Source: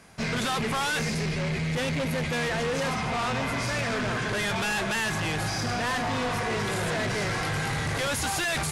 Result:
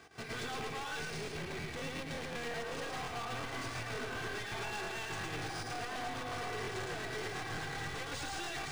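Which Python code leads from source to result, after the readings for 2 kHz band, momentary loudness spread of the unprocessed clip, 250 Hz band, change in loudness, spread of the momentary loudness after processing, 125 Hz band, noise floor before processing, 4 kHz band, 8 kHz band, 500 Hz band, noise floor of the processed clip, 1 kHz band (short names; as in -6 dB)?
-11.5 dB, 2 LU, -15.0 dB, -12.0 dB, 2 LU, -15.0 dB, -30 dBFS, -11.0 dB, -13.0 dB, -11.5 dB, -43 dBFS, -11.0 dB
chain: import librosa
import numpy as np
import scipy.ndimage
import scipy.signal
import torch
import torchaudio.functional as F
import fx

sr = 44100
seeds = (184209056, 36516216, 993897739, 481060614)

y = scipy.signal.sosfilt(scipy.signal.butter(2, 81.0, 'highpass', fs=sr, output='sos'), x)
y = y + 0.82 * np.pad(y, (int(2.6 * sr / 1000.0), 0))[:len(y)]
y = fx.step_gate(y, sr, bpm=200, pattern='x.x.xx.x', floor_db=-12.0, edge_ms=4.5)
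y = fx.cheby_harmonics(y, sr, harmonics=(4,), levels_db=(-16,), full_scale_db=-19.5)
y = np.clip(y, -10.0 ** (-34.5 / 20.0), 10.0 ** (-34.5 / 20.0))
y = y + 10.0 ** (-3.0 / 20.0) * np.pad(y, (int(110 * sr / 1000.0), 0))[:len(y)]
y = fx.buffer_crackle(y, sr, first_s=0.87, period_s=0.18, block=1024, kind='repeat')
y = np.interp(np.arange(len(y)), np.arange(len(y))[::3], y[::3])
y = y * librosa.db_to_amplitude(-5.0)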